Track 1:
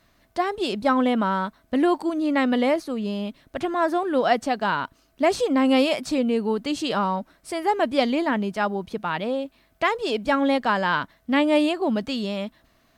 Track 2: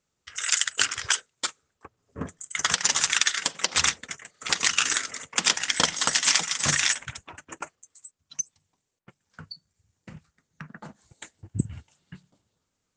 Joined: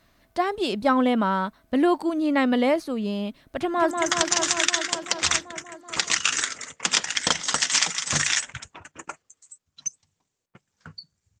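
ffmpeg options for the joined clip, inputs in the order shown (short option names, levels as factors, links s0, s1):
-filter_complex "[0:a]apad=whole_dur=11.4,atrim=end=11.4,atrim=end=3.912[s0];[1:a]atrim=start=2.438:end=9.93[s1];[s0][s1]acrossfade=d=0.004:c1=hsin:c2=hsin,asplit=2[s2][s3];[s3]afade=t=in:st=3.58:d=0.01,afade=t=out:st=3.91:d=0.01,aecho=0:1:190|380|570|760|950|1140|1330|1520|1710|1900|2090|2280:0.595662|0.47653|0.381224|0.304979|0.243983|0.195187|0.156149|0.124919|0.0999355|0.0799484|0.0639587|0.051167[s4];[s2][s4]amix=inputs=2:normalize=0"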